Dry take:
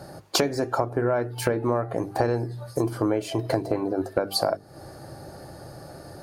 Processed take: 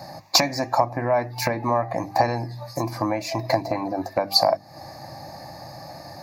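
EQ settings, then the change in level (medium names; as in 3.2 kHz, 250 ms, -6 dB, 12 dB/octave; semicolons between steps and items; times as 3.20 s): high-pass 290 Hz 6 dB/octave; static phaser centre 2.1 kHz, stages 8; +9.0 dB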